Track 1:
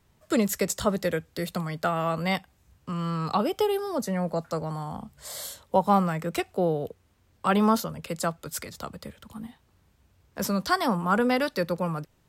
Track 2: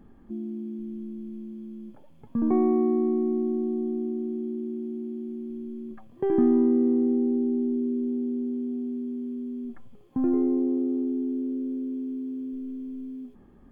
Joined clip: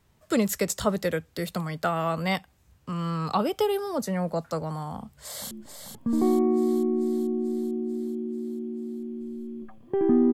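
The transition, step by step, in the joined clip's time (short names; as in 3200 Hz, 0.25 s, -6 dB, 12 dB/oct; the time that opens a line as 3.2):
track 1
4.97–5.51 echo throw 0.44 s, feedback 65%, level -6.5 dB
5.51 switch to track 2 from 1.8 s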